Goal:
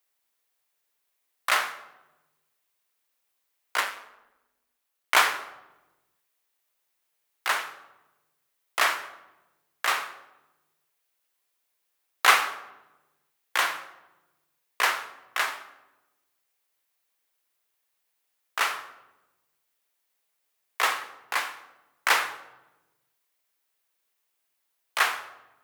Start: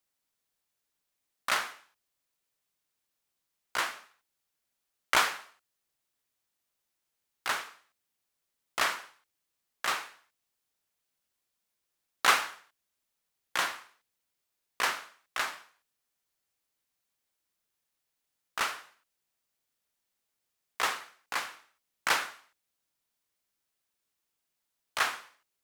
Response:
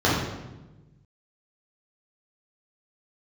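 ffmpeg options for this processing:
-filter_complex "[0:a]asplit=2[a][b];[1:a]atrim=start_sample=2205[c];[b][c]afir=irnorm=-1:irlink=0,volume=-29.5dB[d];[a][d]amix=inputs=2:normalize=0,crystalizer=i=3:c=0,asettb=1/sr,asplit=3[e][f][g];[e]atrim=end=3.804[h];[f]atrim=start=3.8:end=5.15,asetpts=PTS-STARTPTS,afade=t=in:d=0.004:c=qsin,afade=t=out:st=1.346:d=0.004:c=qsin,aeval=exprs='val(0)*sin(2*PI*100*n/s)':c=same[i];[g]atrim=start=5.146[j];[h][i]acrossfade=d=0.004:c1=hsin:c2=qsin[k];[k][j]acrossfade=d=0.004:c1=qsin:c2=hsin,acrossover=split=390 2900:gain=0.224 1 0.224[l][m][n];[l][m][n]amix=inputs=3:normalize=0,volume=4.5dB"

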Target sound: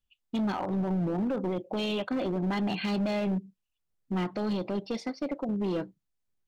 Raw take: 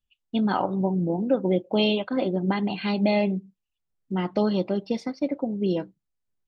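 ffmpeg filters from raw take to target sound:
-filter_complex "[0:a]asettb=1/sr,asplit=3[a][b][c];[a]atrim=end=4.864[d];[b]atrim=start=4.86:end=5.49,asetpts=PTS-STARTPTS,afade=t=in:d=0.004:c=qsin,afade=t=out:st=0.626:d=0.004:c=qsin,lowshelf=f=190:g=-9.5[e];[c]atrim=start=5.486[f];[d][e]acrossfade=d=0.004:c1=hsin:c2=qsin[g];[g][f]acrossfade=d=0.004:c1=qsin:c2=hsin,alimiter=limit=-20.5dB:level=0:latency=1:release=37,asoftclip=type=hard:threshold=-25.5dB"

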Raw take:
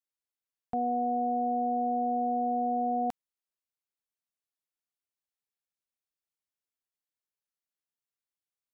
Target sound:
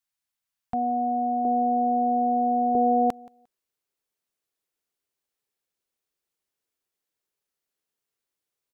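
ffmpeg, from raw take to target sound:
-af "asetnsamples=n=441:p=0,asendcmd='1.45 equalizer g -4;2.75 equalizer g 7',equalizer=f=410:w=2:g=-15,aecho=1:1:176|352:0.0631|0.0114,volume=7dB"

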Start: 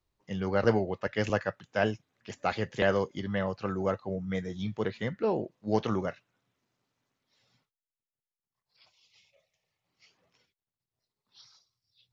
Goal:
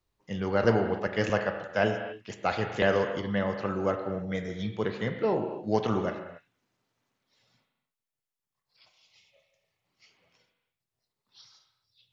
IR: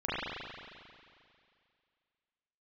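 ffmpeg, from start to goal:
-filter_complex "[0:a]asplit=2[a][b];[1:a]atrim=start_sample=2205,afade=t=out:st=0.35:d=0.01,atrim=end_sample=15876,lowshelf=f=160:g=-7[c];[b][c]afir=irnorm=-1:irlink=0,volume=-12.5dB[d];[a][d]amix=inputs=2:normalize=0"

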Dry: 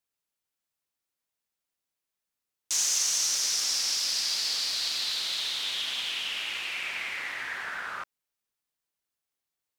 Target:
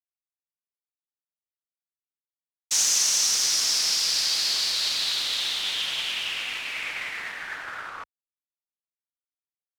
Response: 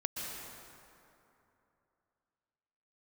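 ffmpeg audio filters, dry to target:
-af "afreqshift=-93,anlmdn=0.0398,agate=range=-33dB:threshold=-30dB:ratio=3:detection=peak,volume=4.5dB"

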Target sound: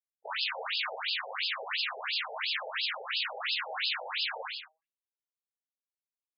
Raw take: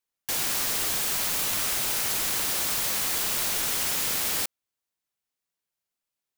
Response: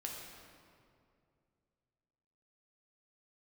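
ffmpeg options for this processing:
-filter_complex "[0:a]aeval=exprs='0.211*(cos(1*acos(clip(val(0)/0.211,-1,1)))-cos(1*PI/2))+0.00531*(cos(2*acos(clip(val(0)/0.211,-1,1)))-cos(2*PI/2))+0.0335*(cos(3*acos(clip(val(0)/0.211,-1,1)))-cos(3*PI/2))+0.00841*(cos(5*acos(clip(val(0)/0.211,-1,1)))-cos(5*PI/2))+0.00266*(cos(6*acos(clip(val(0)/0.211,-1,1)))-cos(6*PI/2))':c=same,acontrast=89,aeval=exprs='sgn(val(0))*max(abs(val(0))-0.00376,0)':c=same,adynamicequalizer=threshold=0.00398:dfrequency=470:dqfactor=1.2:tfrequency=470:tqfactor=1.2:attack=5:release=100:ratio=0.375:range=2:mode=cutabove:tftype=bell,asetrate=80880,aresample=44100,atempo=0.545254,flanger=delay=4.6:depth=2:regen=89:speed=0.58:shape=sinusoidal[a];[1:a]atrim=start_sample=2205,atrim=end_sample=6174,asetrate=26901,aresample=44100[b];[a][b]afir=irnorm=-1:irlink=0,afftfilt=real='re*between(b*sr/1024,600*pow(3700/600,0.5+0.5*sin(2*PI*2.9*pts/sr))/1.41,600*pow(3700/600,0.5+0.5*sin(2*PI*2.9*pts/sr))*1.41)':imag='im*between(b*sr/1024,600*pow(3700/600,0.5+0.5*sin(2*PI*2.9*pts/sr))/1.41,600*pow(3700/600,0.5+0.5*sin(2*PI*2.9*pts/sr))*1.41)':win_size=1024:overlap=0.75,volume=9dB"

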